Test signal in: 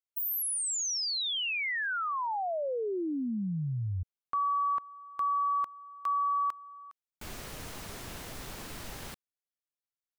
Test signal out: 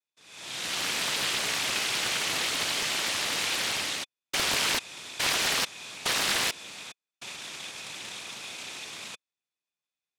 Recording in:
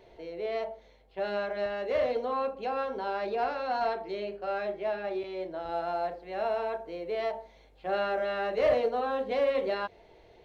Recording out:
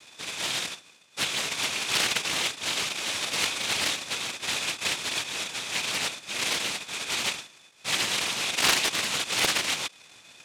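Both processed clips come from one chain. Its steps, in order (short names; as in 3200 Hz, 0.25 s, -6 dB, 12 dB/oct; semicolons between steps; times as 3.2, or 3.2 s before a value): in parallel at +1 dB: compressor, threshold -39 dBFS; on the sum: noise vocoder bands 1; small resonant body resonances 2500/3500 Hz, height 14 dB, ringing for 30 ms; Doppler distortion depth 0.81 ms; gain -2.5 dB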